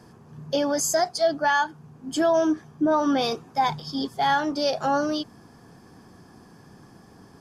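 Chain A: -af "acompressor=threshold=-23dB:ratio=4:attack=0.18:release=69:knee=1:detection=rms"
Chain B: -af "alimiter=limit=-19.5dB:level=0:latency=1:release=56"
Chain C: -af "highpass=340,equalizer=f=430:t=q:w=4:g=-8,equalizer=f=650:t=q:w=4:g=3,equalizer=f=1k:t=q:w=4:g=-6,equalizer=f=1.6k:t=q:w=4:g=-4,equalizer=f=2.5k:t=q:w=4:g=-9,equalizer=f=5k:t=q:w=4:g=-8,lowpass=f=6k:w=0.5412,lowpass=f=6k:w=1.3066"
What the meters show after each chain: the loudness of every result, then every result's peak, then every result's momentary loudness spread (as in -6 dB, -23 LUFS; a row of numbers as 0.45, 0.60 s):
-29.5, -28.5, -26.0 LUFS; -19.5, -19.5, -11.5 dBFS; 7, 7, 12 LU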